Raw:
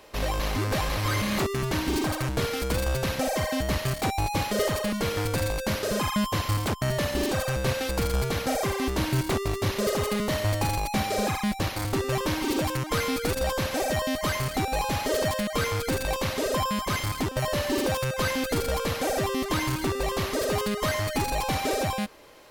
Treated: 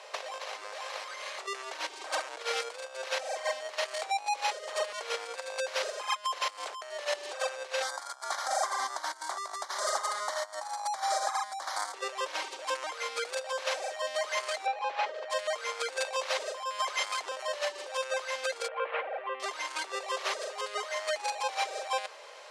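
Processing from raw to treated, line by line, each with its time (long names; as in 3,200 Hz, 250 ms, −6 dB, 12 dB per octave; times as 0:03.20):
0:07.82–0:11.94: phaser with its sweep stopped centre 1,100 Hz, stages 4
0:14.66–0:15.30: low-pass filter 2,800 Hz
0:18.68–0:19.40: Butterworth low-pass 2,700 Hz
whole clip: low-pass filter 8,600 Hz 24 dB per octave; compressor whose output falls as the input rises −31 dBFS, ratio −0.5; Butterworth high-pass 500 Hz 36 dB per octave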